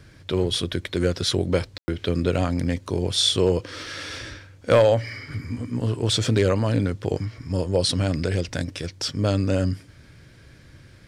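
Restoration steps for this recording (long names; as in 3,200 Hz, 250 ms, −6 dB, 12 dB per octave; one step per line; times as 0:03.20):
clipped peaks rebuilt −9 dBFS
ambience match 0:01.78–0:01.88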